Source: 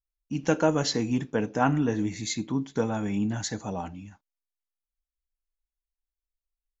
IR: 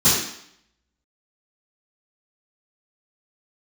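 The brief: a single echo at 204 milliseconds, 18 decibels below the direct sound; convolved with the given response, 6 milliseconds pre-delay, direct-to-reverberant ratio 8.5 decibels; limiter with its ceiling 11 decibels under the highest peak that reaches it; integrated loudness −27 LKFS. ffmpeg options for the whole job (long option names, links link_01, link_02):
-filter_complex "[0:a]alimiter=limit=-20dB:level=0:latency=1,aecho=1:1:204:0.126,asplit=2[link_01][link_02];[1:a]atrim=start_sample=2205,adelay=6[link_03];[link_02][link_03]afir=irnorm=-1:irlink=0,volume=-27.5dB[link_04];[link_01][link_04]amix=inputs=2:normalize=0,volume=2.5dB"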